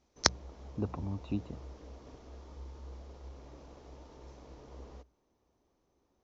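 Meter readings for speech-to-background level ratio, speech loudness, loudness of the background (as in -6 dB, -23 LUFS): 16.5 dB, -35.0 LUFS, -51.5 LUFS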